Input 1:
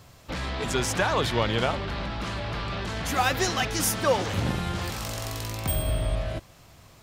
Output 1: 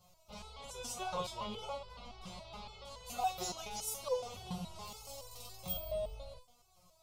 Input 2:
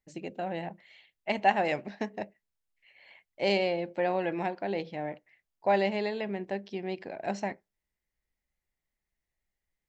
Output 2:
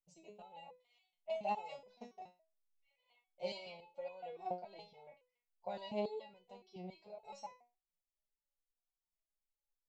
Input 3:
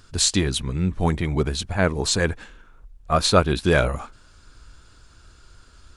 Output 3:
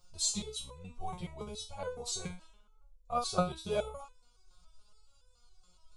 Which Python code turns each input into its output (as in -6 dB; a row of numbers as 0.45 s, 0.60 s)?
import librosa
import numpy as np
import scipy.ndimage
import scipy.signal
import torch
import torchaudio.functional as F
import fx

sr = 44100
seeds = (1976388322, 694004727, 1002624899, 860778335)

y = fx.fixed_phaser(x, sr, hz=720.0, stages=4)
y = fx.resonator_held(y, sr, hz=7.1, low_hz=180.0, high_hz=500.0)
y = F.gain(torch.from_numpy(y), 2.5).numpy()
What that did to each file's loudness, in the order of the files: -14.5 LU, -14.5 LU, -15.0 LU